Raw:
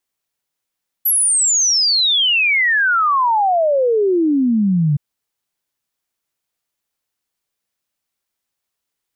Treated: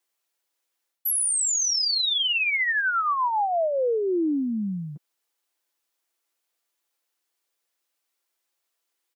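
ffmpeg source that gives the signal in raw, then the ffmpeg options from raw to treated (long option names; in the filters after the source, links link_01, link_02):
-f lavfi -i "aevalsrc='0.251*clip(min(t,3.92-t)/0.01,0,1)*sin(2*PI*12000*3.92/log(140/12000)*(exp(log(140/12000)*t/3.92)-1))':duration=3.92:sample_rate=44100"
-af "highpass=frequency=290:width=0.5412,highpass=frequency=290:width=1.3066,aecho=1:1:5.9:0.34,areverse,acompressor=threshold=-24dB:ratio=4,areverse"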